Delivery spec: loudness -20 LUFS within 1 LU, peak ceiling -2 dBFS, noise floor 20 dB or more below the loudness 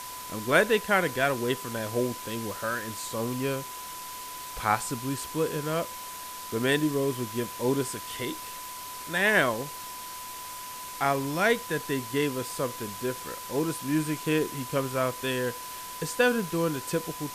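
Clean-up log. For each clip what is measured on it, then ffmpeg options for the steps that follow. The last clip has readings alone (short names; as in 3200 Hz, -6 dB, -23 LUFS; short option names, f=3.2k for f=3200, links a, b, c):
steady tone 1000 Hz; tone level -40 dBFS; noise floor -40 dBFS; noise floor target -49 dBFS; loudness -29.0 LUFS; peak -7.5 dBFS; loudness target -20.0 LUFS
-> -af "bandreject=f=1k:w=30"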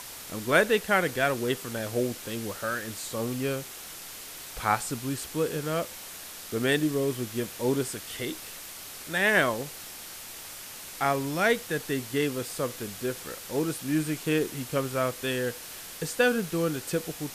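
steady tone none; noise floor -42 dBFS; noise floor target -49 dBFS
-> -af "afftdn=nr=7:nf=-42"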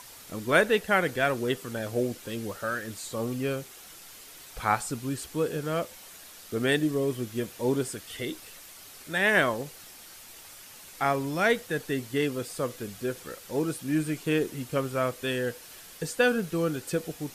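noise floor -48 dBFS; noise floor target -49 dBFS
-> -af "afftdn=nr=6:nf=-48"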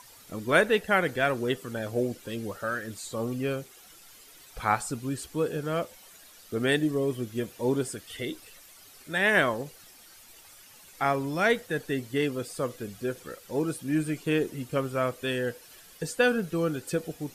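noise floor -53 dBFS; loudness -29.0 LUFS; peak -8.0 dBFS; loudness target -20.0 LUFS
-> -af "volume=9dB,alimiter=limit=-2dB:level=0:latency=1"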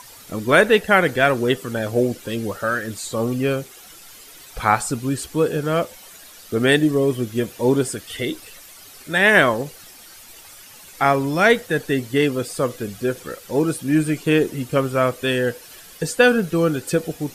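loudness -20.0 LUFS; peak -2.0 dBFS; noise floor -44 dBFS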